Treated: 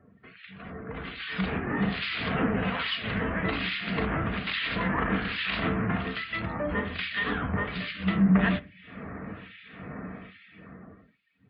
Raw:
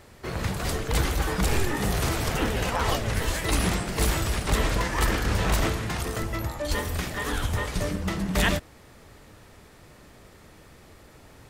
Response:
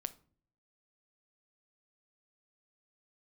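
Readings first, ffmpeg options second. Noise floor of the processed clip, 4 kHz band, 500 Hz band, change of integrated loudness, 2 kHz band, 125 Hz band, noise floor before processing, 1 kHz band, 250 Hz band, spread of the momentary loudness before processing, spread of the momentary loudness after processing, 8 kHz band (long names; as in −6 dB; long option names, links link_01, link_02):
−59 dBFS, −2.0 dB, −4.0 dB, −1.5 dB, +0.5 dB, −4.0 dB, −52 dBFS, −3.0 dB, +2.5 dB, 5 LU, 16 LU, below −40 dB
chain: -filter_complex "[0:a]acrossover=split=290[link_01][link_02];[link_01]asoftclip=type=tanh:threshold=-21.5dB[link_03];[link_03][link_02]amix=inputs=2:normalize=0,acrossover=split=2000[link_04][link_05];[link_04]aeval=exprs='val(0)*(1-1/2+1/2*cos(2*PI*1.2*n/s))':channel_layout=same[link_06];[link_05]aeval=exprs='val(0)*(1-1/2-1/2*cos(2*PI*1.2*n/s))':channel_layout=same[link_07];[link_06][link_07]amix=inputs=2:normalize=0,aresample=11025,aeval=exprs='0.2*sin(PI/2*1.41*val(0)/0.2)':channel_layout=same,aresample=44100,acompressor=threshold=-42dB:ratio=2[link_08];[1:a]atrim=start_sample=2205,asetrate=66150,aresample=44100[link_09];[link_08][link_09]afir=irnorm=-1:irlink=0,dynaudnorm=framelen=140:gausssize=17:maxgain=16dB,highpass=120,equalizer=frequency=120:width_type=q:width=4:gain=-3,equalizer=frequency=190:width_type=q:width=4:gain=5,equalizer=frequency=370:width_type=q:width=4:gain=-7,equalizer=frequency=550:width_type=q:width=4:gain=-6,equalizer=frequency=880:width_type=q:width=4:gain=-8,lowpass=frequency=3200:width=0.5412,lowpass=frequency=3200:width=1.3066,afftdn=noise_reduction=16:noise_floor=-52"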